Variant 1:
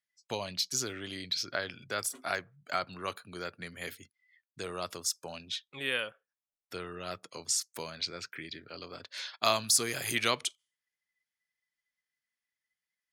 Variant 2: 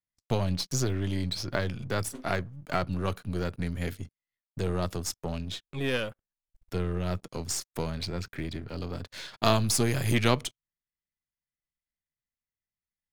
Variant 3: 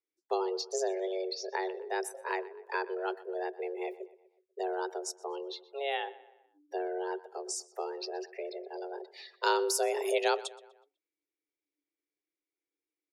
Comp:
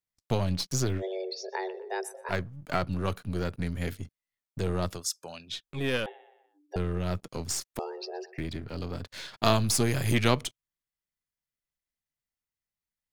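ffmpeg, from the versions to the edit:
-filter_complex "[2:a]asplit=3[s0][s1][s2];[1:a]asplit=5[s3][s4][s5][s6][s7];[s3]atrim=end=1.03[s8];[s0]atrim=start=0.97:end=2.34[s9];[s4]atrim=start=2.28:end=5.04[s10];[0:a]atrim=start=4.88:end=5.64[s11];[s5]atrim=start=5.48:end=6.062[s12];[s1]atrim=start=6.058:end=6.762[s13];[s6]atrim=start=6.758:end=7.792[s14];[s2]atrim=start=7.788:end=8.382[s15];[s7]atrim=start=8.378[s16];[s8][s9]acrossfade=d=0.06:c1=tri:c2=tri[s17];[s17][s10]acrossfade=d=0.06:c1=tri:c2=tri[s18];[s18][s11]acrossfade=d=0.16:c1=tri:c2=tri[s19];[s19][s12]acrossfade=d=0.16:c1=tri:c2=tri[s20];[s20][s13]acrossfade=d=0.004:c1=hsin:c2=hsin[s21];[s21][s14]acrossfade=d=0.004:c1=hsin:c2=hsin[s22];[s22][s15]acrossfade=d=0.004:c1=hsin:c2=hsin[s23];[s23][s16]acrossfade=d=0.004:c1=hsin:c2=hsin"

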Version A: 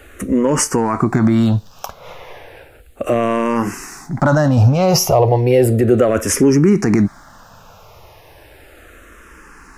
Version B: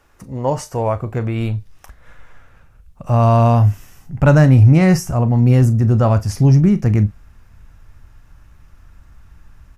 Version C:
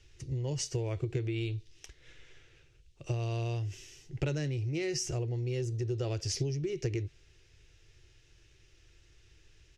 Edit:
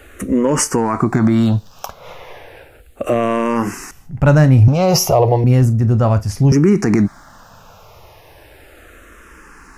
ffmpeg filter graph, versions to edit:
-filter_complex "[1:a]asplit=2[s0][s1];[0:a]asplit=3[s2][s3][s4];[s2]atrim=end=3.912[s5];[s0]atrim=start=3.908:end=4.682[s6];[s3]atrim=start=4.678:end=5.442[s7];[s1]atrim=start=5.438:end=6.522[s8];[s4]atrim=start=6.518[s9];[s5][s6]acrossfade=d=0.004:c1=hsin:c2=hsin[s10];[s10][s7]acrossfade=d=0.004:c1=hsin:c2=hsin[s11];[s11][s8]acrossfade=d=0.004:c1=hsin:c2=hsin[s12];[s12][s9]acrossfade=d=0.004:c1=hsin:c2=hsin"

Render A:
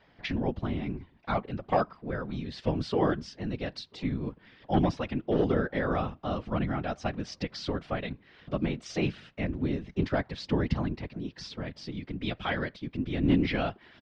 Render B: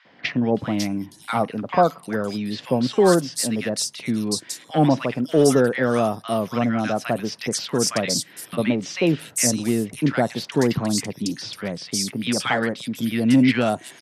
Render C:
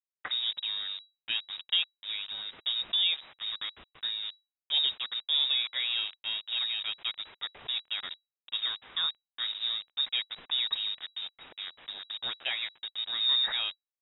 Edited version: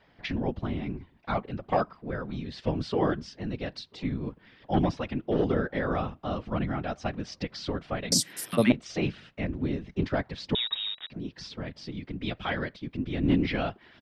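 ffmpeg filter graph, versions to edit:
-filter_complex "[0:a]asplit=3[s0][s1][s2];[s0]atrim=end=8.122[s3];[1:a]atrim=start=8.118:end=8.722[s4];[s1]atrim=start=8.718:end=10.552[s5];[2:a]atrim=start=10.548:end=11.102[s6];[s2]atrim=start=11.098[s7];[s3][s4]acrossfade=d=0.004:c1=hsin:c2=hsin[s8];[s8][s5]acrossfade=d=0.004:c1=hsin:c2=hsin[s9];[s9][s6]acrossfade=d=0.004:c1=hsin:c2=hsin[s10];[s10][s7]acrossfade=d=0.004:c1=hsin:c2=hsin"

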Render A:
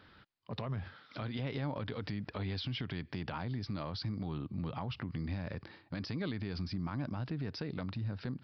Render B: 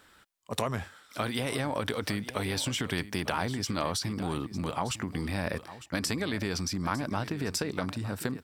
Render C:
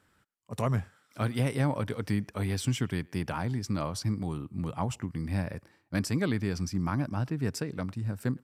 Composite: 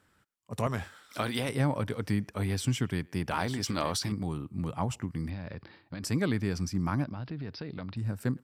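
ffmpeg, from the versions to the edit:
-filter_complex "[1:a]asplit=2[s0][s1];[0:a]asplit=2[s2][s3];[2:a]asplit=5[s4][s5][s6][s7][s8];[s4]atrim=end=0.672[s9];[s0]atrim=start=0.668:end=1.492[s10];[s5]atrim=start=1.488:end=3.312[s11];[s1]atrim=start=3.308:end=4.122[s12];[s6]atrim=start=4.118:end=5.302[s13];[s2]atrim=start=5.298:end=6.032[s14];[s7]atrim=start=6.028:end=7.042[s15];[s3]atrim=start=7.038:end=7.972[s16];[s8]atrim=start=7.968[s17];[s9][s10]acrossfade=d=0.004:c1=hsin:c2=hsin[s18];[s18][s11]acrossfade=d=0.004:c1=hsin:c2=hsin[s19];[s19][s12]acrossfade=d=0.004:c1=hsin:c2=hsin[s20];[s20][s13]acrossfade=d=0.004:c1=hsin:c2=hsin[s21];[s21][s14]acrossfade=d=0.004:c1=hsin:c2=hsin[s22];[s22][s15]acrossfade=d=0.004:c1=hsin:c2=hsin[s23];[s23][s16]acrossfade=d=0.004:c1=hsin:c2=hsin[s24];[s24][s17]acrossfade=d=0.004:c1=hsin:c2=hsin"

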